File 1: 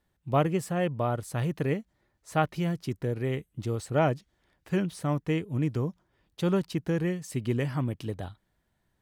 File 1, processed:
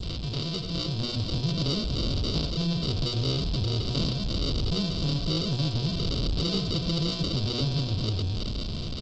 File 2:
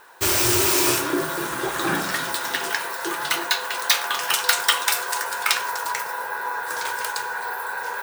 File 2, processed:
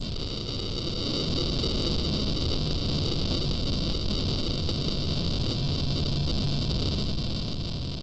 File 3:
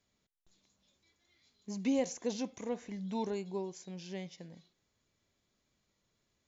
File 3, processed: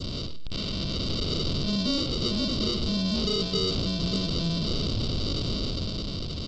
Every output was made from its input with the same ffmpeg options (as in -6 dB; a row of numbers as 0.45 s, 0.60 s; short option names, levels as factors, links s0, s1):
-filter_complex "[0:a]aeval=exprs='val(0)+0.5*0.0376*sgn(val(0))':c=same,acompressor=threshold=0.0316:ratio=6,aresample=16000,acrusher=samples=19:mix=1:aa=0.000001,aresample=44100,lowshelf=f=180:g=10,asplit=2[s0][s1];[s1]adelay=90,highpass=300,lowpass=3400,asoftclip=type=hard:threshold=0.0708,volume=0.316[s2];[s0][s2]amix=inputs=2:normalize=0,asoftclip=type=tanh:threshold=0.0398,dynaudnorm=f=110:g=17:m=1.78,aresample=11025,aresample=44100,aexciter=amount=6.9:drive=9.2:freq=2900,bandreject=f=60:t=h:w=6,bandreject=f=120:t=h:w=6,bandreject=f=180:t=h:w=6,bandreject=f=240:t=h:w=6,bandreject=f=300:t=h:w=6,bandreject=f=360:t=h:w=6,bandreject=f=420:t=h:w=6,bandreject=f=480:t=h:w=6,bandreject=f=540:t=h:w=6,bandreject=f=600:t=h:w=6,adynamicequalizer=threshold=0.00794:dfrequency=2200:dqfactor=0.79:tfrequency=2200:tqfactor=0.79:attack=5:release=100:ratio=0.375:range=4:mode=cutabove:tftype=bell" -ar 16000 -c:a g722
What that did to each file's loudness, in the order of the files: +2.0 LU, -6.0 LU, +10.0 LU